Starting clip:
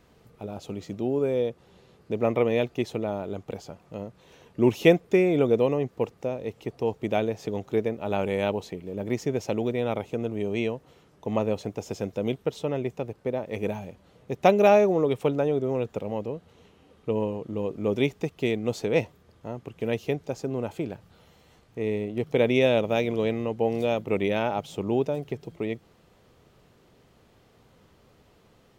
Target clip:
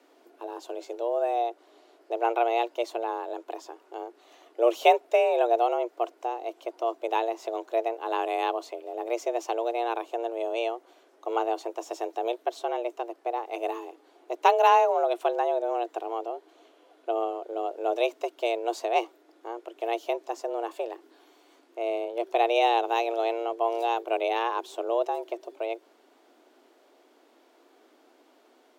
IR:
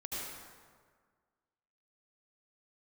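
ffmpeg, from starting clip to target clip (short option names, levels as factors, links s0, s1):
-af "afreqshift=230,volume=0.841"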